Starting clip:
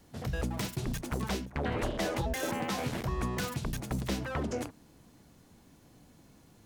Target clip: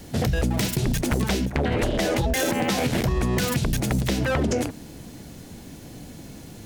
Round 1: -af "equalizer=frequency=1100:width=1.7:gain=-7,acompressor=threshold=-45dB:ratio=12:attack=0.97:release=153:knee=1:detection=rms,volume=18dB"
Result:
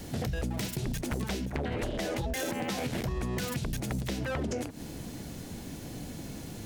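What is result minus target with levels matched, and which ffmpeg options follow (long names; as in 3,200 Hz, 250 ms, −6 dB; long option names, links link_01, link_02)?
downward compressor: peak gain reduction +9.5 dB
-af "equalizer=frequency=1100:width=1.7:gain=-7,acompressor=threshold=-34.5dB:ratio=12:attack=0.97:release=153:knee=1:detection=rms,volume=18dB"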